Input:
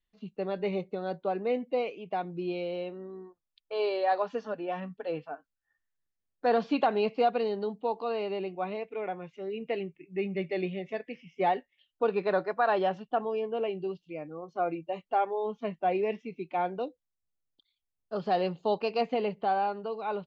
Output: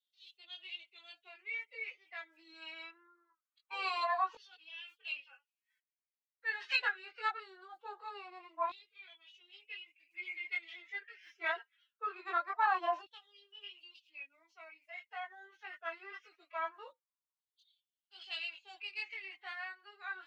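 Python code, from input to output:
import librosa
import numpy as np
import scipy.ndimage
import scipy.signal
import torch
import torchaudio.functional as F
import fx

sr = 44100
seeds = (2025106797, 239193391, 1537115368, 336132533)

y = fx.pitch_keep_formants(x, sr, semitones=10.5)
y = fx.filter_lfo_highpass(y, sr, shape='saw_down', hz=0.23, low_hz=950.0, high_hz=3700.0, q=5.6)
y = fx.chorus_voices(y, sr, voices=6, hz=0.18, base_ms=20, depth_ms=2.2, mix_pct=50)
y = y * librosa.db_to_amplitude(-3.5)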